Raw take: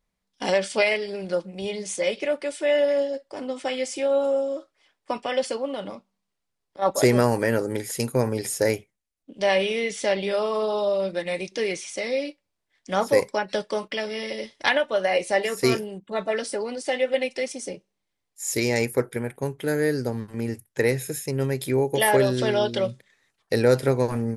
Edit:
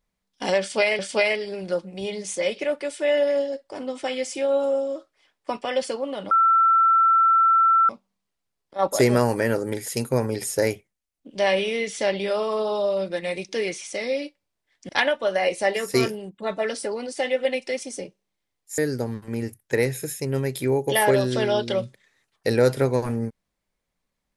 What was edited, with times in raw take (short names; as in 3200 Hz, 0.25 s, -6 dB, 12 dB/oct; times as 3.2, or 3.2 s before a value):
0.6–0.99 loop, 2 plays
5.92 add tone 1340 Hz -14 dBFS 1.58 s
12.92–14.58 cut
18.47–19.84 cut